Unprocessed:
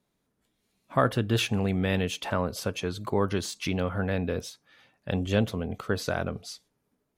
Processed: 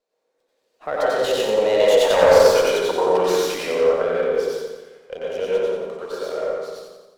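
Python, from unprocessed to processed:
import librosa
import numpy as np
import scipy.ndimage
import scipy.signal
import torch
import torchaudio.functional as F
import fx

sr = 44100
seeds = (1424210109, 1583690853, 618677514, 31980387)

p1 = fx.doppler_pass(x, sr, speed_mps=36, closest_m=12.0, pass_at_s=2.2)
p2 = scipy.signal.sosfilt(scipy.signal.butter(4, 8200.0, 'lowpass', fs=sr, output='sos'), p1)
p3 = fx.high_shelf(p2, sr, hz=4500.0, db=10.0)
p4 = fx.over_compress(p3, sr, threshold_db=-38.0, ratio=-0.5)
p5 = p3 + (p4 * librosa.db_to_amplitude(-1.5))
p6 = fx.highpass_res(p5, sr, hz=500.0, q=4.6)
p7 = 10.0 ** (-14.5 / 20.0) * (np.abs((p6 / 10.0 ** (-14.5 / 20.0) + 3.0) % 4.0 - 2.0) - 1.0)
p8 = p7 + fx.echo_feedback(p7, sr, ms=88, feedback_pct=55, wet_db=-5, dry=0)
p9 = fx.rev_plate(p8, sr, seeds[0], rt60_s=1.1, hf_ratio=0.3, predelay_ms=85, drr_db=-6.0)
p10 = fx.running_max(p9, sr, window=3)
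y = p10 * librosa.db_to_amplitude(1.5)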